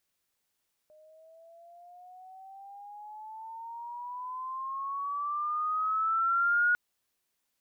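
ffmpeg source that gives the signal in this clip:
-f lavfi -i "aevalsrc='pow(10,(-21.5+33*(t/5.85-1))/20)*sin(2*PI*611*5.85/(15*log(2)/12)*(exp(15*log(2)/12*t/5.85)-1))':d=5.85:s=44100"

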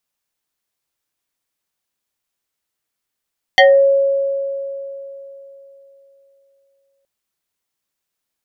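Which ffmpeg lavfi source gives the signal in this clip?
-f lavfi -i "aevalsrc='0.596*pow(10,-3*t/3.51)*sin(2*PI*551*t+2.6*pow(10,-3*t/0.29)*sin(2*PI*2.37*551*t))':d=3.47:s=44100"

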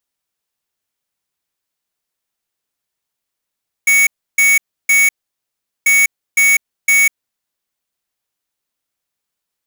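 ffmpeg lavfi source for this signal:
-f lavfi -i "aevalsrc='0.299*(2*lt(mod(2230*t,1),0.5)-1)*clip(min(mod(mod(t,1.99),0.51),0.2-mod(mod(t,1.99),0.51))/0.005,0,1)*lt(mod(t,1.99),1.53)':d=3.98:s=44100"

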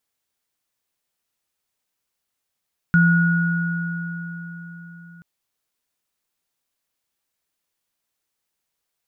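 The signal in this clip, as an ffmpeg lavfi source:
-f lavfi -i "aevalsrc='0.251*pow(10,-3*t/4.5)*sin(2*PI*171*t)+0.158*pow(10,-3*t/4.13)*sin(2*PI*1450*t)':d=2.28:s=44100"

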